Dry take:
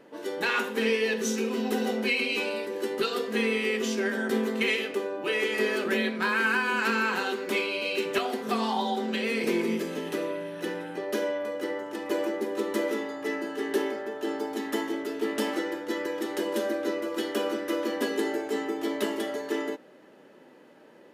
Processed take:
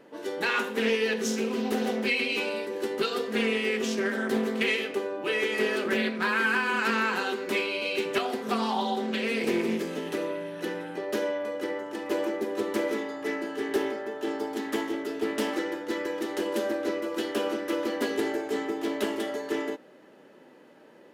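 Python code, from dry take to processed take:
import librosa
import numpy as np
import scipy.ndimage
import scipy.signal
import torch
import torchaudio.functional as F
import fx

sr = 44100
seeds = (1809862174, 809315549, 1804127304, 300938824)

y = fx.doppler_dist(x, sr, depth_ms=0.18)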